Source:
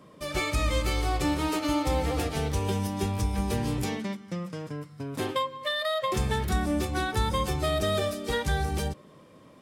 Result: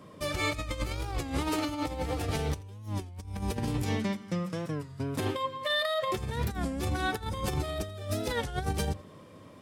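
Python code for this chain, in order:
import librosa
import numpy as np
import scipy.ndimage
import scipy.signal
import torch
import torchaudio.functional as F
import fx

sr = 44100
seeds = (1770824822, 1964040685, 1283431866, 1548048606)

y = fx.peak_eq(x, sr, hz=95.0, db=12.0, octaves=0.22)
y = fx.over_compress(y, sr, threshold_db=-29.0, ratio=-0.5)
y = y + 10.0 ** (-21.5 / 20.0) * np.pad(y, (int(84 * sr / 1000.0), 0))[:len(y)]
y = fx.record_warp(y, sr, rpm=33.33, depth_cents=160.0)
y = F.gain(torch.from_numpy(y), -2.0).numpy()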